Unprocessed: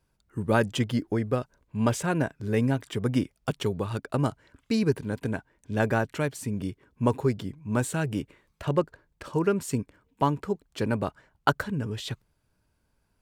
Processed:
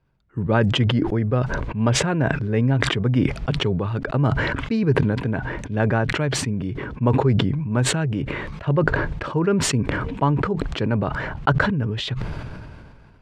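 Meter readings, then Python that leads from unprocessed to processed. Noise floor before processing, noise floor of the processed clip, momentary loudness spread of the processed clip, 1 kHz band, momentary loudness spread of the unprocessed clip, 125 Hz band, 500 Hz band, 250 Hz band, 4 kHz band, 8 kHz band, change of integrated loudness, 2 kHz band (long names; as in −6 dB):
−73 dBFS, −45 dBFS, 8 LU, +5.0 dB, 9 LU, +9.0 dB, +4.5 dB, +5.5 dB, +11.0 dB, +9.5 dB, +6.5 dB, +8.5 dB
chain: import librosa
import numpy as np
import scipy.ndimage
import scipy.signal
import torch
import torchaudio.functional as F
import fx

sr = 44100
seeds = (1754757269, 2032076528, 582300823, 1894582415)

y = scipy.signal.sosfilt(scipy.signal.butter(2, 2900.0, 'lowpass', fs=sr, output='sos'), x)
y = fx.peak_eq(y, sr, hz=130.0, db=5.5, octaves=0.59)
y = fx.sustainer(y, sr, db_per_s=28.0)
y = y * librosa.db_to_amplitude(2.5)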